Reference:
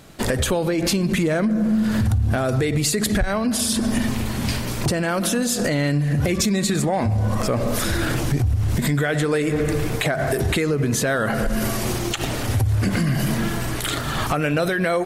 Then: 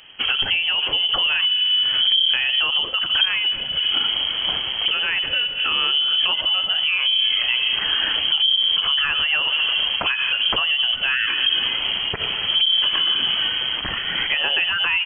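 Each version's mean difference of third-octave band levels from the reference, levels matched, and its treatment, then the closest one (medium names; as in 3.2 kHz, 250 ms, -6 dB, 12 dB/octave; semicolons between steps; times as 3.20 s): 19.5 dB: frequency inversion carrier 3.2 kHz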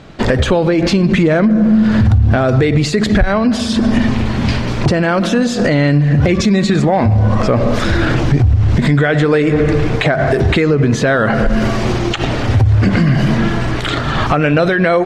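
4.5 dB: distance through air 160 m; trim +9 dB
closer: second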